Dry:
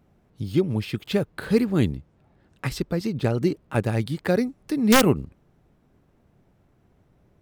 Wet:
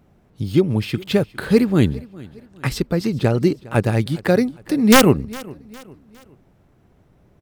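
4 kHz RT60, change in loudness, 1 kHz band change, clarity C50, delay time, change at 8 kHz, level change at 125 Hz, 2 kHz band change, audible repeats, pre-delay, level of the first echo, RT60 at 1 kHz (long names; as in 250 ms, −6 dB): no reverb audible, +5.5 dB, +5.5 dB, no reverb audible, 408 ms, +5.5 dB, +5.5 dB, +5.5 dB, 2, no reverb audible, −21.5 dB, no reverb audible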